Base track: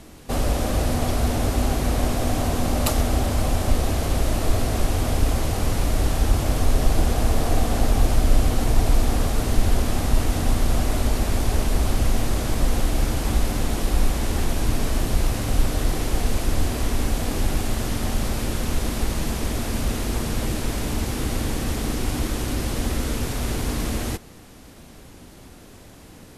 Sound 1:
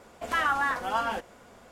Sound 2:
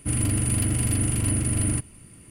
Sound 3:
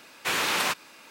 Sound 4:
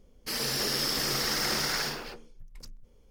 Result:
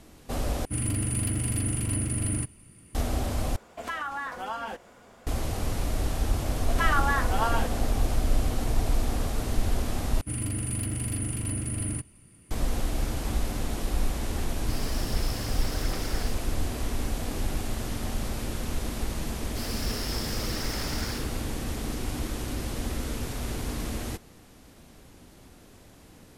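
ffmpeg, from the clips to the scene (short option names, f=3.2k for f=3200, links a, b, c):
-filter_complex "[2:a]asplit=2[a][b];[1:a]asplit=2[c][d];[4:a]asplit=2[e][f];[0:a]volume=-7dB[g];[c]acompressor=threshold=-33dB:ratio=3:attack=26:release=149:knee=6:detection=rms[h];[e]aphaser=in_gain=1:out_gain=1:delay=3.8:decay=0.44:speed=1.3:type=sinusoidal[i];[g]asplit=4[j][k][l][m];[j]atrim=end=0.654[n];[a]atrim=end=2.3,asetpts=PTS-STARTPTS,volume=-4.5dB[o];[k]atrim=start=2.946:end=3.564[p];[h]atrim=end=1.71,asetpts=PTS-STARTPTS,volume=-0.5dB[q];[l]atrim=start=5.266:end=10.214[r];[b]atrim=end=2.3,asetpts=PTS-STARTPTS,volume=-7dB[s];[m]atrim=start=12.506[t];[d]atrim=end=1.71,asetpts=PTS-STARTPTS,afade=t=in:d=0.004:c=hsin,afade=t=out:st=1.706:d=0.004:c=hsin,adelay=6470[u];[i]atrim=end=3.1,asetpts=PTS-STARTPTS,volume=-12dB,afade=t=in:d=0.004:c=hsin,afade=t=out:st=3.096:d=0.004:c=hsin,adelay=14410[v];[f]atrim=end=3.1,asetpts=PTS-STARTPTS,volume=-7dB,afade=t=in:d=0.004:c=hsin,afade=t=out:st=3.096:d=0.004:c=hsin,adelay=19290[w];[n][o]acrossfade=d=0.004:c1=hsin:c2=hsin[x];[x][p]acrossfade=d=0.004:c1=hsin:c2=hsin[y];[y][q]acrossfade=d=0.004:c1=hsin:c2=hsin[z];[z][r]acrossfade=d=0.004:c1=hsin:c2=hsin[aa];[aa][s]acrossfade=d=0.004:c1=hsin:c2=hsin[ab];[ab][t]acrossfade=d=0.004:c1=hsin:c2=hsin[ac];[ac][u][v][w]amix=inputs=4:normalize=0"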